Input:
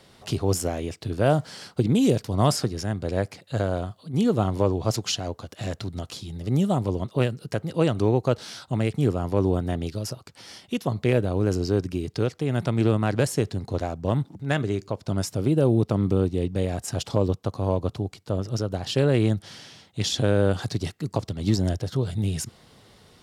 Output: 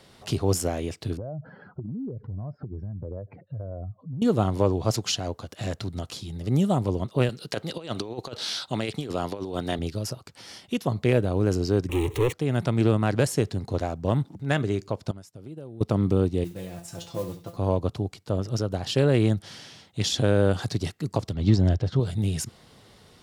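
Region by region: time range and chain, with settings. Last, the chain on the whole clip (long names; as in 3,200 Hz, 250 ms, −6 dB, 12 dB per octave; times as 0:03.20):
0:01.17–0:04.22: expanding power law on the bin magnitudes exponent 2.1 + downward compressor 16 to 1, threshold −30 dBFS + low-pass filter 1,600 Hz 24 dB per octave
0:07.29–0:09.79: high-pass filter 340 Hz 6 dB per octave + parametric band 3,800 Hz +8.5 dB 0.92 octaves + compressor whose output falls as the input rises −29 dBFS, ratio −0.5
0:11.89–0:12.33: power curve on the samples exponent 0.5 + phaser with its sweep stopped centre 1,000 Hz, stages 8
0:15.11–0:15.81: downward compressor 4 to 1, threshold −35 dBFS + downward expander −32 dBFS
0:16.44–0:17.57: tuned comb filter 170 Hz, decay 0.19 s, mix 90% + flutter between parallel walls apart 11.9 metres, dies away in 0.35 s + noise that follows the level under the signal 19 dB
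0:21.34–0:22.00: low-pass filter 4,500 Hz + low-shelf EQ 110 Hz +8 dB
whole clip: no processing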